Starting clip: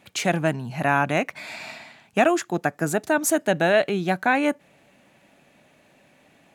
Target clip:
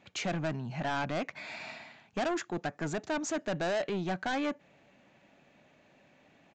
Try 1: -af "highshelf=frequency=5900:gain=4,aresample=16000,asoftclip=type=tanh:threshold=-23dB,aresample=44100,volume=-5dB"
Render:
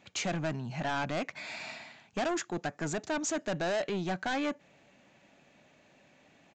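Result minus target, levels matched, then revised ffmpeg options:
8,000 Hz band +4.0 dB
-af "highshelf=frequency=5900:gain=-7,aresample=16000,asoftclip=type=tanh:threshold=-23dB,aresample=44100,volume=-5dB"

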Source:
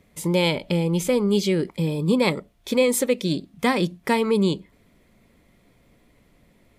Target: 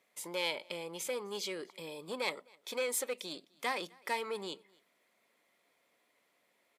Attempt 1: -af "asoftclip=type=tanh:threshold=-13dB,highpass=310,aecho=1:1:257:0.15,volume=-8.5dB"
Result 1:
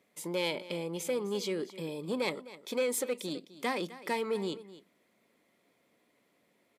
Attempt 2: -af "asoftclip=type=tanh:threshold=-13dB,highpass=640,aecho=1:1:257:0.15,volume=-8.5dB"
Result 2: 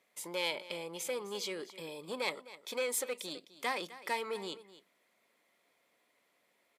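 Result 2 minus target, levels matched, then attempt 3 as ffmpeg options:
echo-to-direct +10.5 dB
-af "asoftclip=type=tanh:threshold=-13dB,highpass=640,aecho=1:1:257:0.0447,volume=-8.5dB"

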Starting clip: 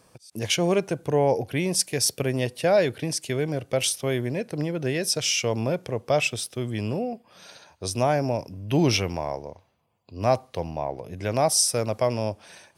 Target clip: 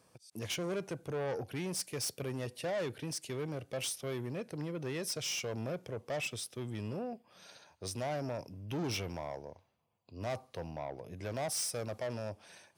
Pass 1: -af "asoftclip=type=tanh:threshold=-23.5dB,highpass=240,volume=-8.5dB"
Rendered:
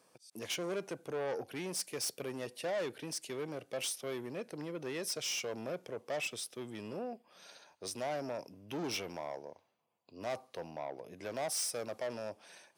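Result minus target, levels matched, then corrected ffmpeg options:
125 Hz band −9.0 dB
-af "asoftclip=type=tanh:threshold=-23.5dB,highpass=63,volume=-8.5dB"

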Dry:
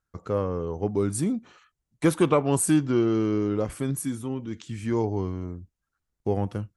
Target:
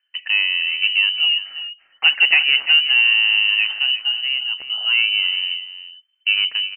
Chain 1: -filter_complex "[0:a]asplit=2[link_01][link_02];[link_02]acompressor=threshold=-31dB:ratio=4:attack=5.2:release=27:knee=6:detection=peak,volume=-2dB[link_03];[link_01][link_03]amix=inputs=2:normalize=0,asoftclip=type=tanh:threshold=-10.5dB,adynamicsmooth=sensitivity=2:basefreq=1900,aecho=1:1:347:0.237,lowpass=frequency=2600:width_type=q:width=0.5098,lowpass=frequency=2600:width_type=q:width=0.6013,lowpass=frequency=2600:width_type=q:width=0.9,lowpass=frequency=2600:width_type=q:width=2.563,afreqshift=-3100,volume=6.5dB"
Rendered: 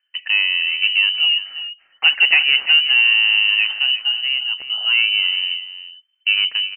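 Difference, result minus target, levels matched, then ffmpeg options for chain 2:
downward compressor: peak gain reduction −5 dB
-filter_complex "[0:a]asplit=2[link_01][link_02];[link_02]acompressor=threshold=-38dB:ratio=4:attack=5.2:release=27:knee=6:detection=peak,volume=-2dB[link_03];[link_01][link_03]amix=inputs=2:normalize=0,asoftclip=type=tanh:threshold=-10.5dB,adynamicsmooth=sensitivity=2:basefreq=1900,aecho=1:1:347:0.237,lowpass=frequency=2600:width_type=q:width=0.5098,lowpass=frequency=2600:width_type=q:width=0.6013,lowpass=frequency=2600:width_type=q:width=0.9,lowpass=frequency=2600:width_type=q:width=2.563,afreqshift=-3100,volume=6.5dB"

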